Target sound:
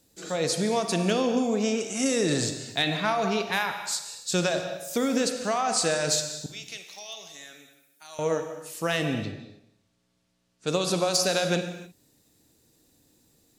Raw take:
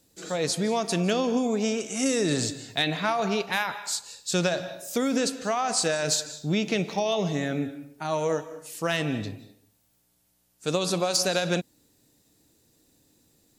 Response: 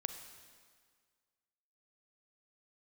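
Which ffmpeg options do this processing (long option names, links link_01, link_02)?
-filter_complex "[0:a]asettb=1/sr,asplit=3[link_01][link_02][link_03];[link_01]atrim=end=6.464[link_04];[link_02]atrim=start=6.46:end=8.19,asetpts=PTS-STARTPTS,afade=type=in:duration=0.004:curve=qsin,afade=type=out:start_time=1.726:duration=0.004:curve=qsin,aderivative[link_05];[link_03]atrim=start=8.186[link_06];[link_04][link_05]acrossfade=duration=0.004:curve1=hsin:curve2=qsin[link_07];[link_07][link_06]acrossfade=duration=0.004:curve1=qsin:curve2=hsin,asettb=1/sr,asplit=3[link_08][link_09][link_10];[link_08]atrim=end=9.144[link_11];[link_09]atrim=start=9.14:end=10.67,asetpts=PTS-STARTPTS,afade=type=in:duration=0.004:curve=qsin,afade=type=out:start_time=1.526:duration=0.004:curve=qsin,lowpass=4900[link_12];[link_10]atrim=start=10.666[link_13];[link_11][link_12]acrossfade=duration=0.004:curve1=hsin:curve2=qsin[link_14];[link_14][link_13]acrossfade=duration=0.004:curve1=qsin:curve2=hsin[link_15];[1:a]atrim=start_sample=2205,afade=type=out:start_time=0.36:duration=0.01,atrim=end_sample=16317[link_16];[link_15][link_16]afir=irnorm=-1:irlink=0,volume=1dB"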